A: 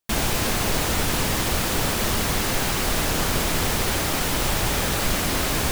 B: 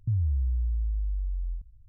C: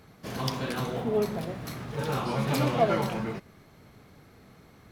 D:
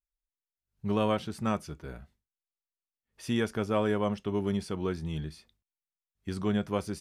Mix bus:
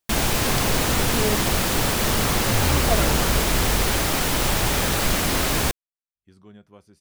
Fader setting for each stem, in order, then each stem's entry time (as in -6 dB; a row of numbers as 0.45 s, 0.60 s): +1.5 dB, +1.0 dB, -0.5 dB, -18.5 dB; 0.00 s, 2.45 s, 0.10 s, 0.00 s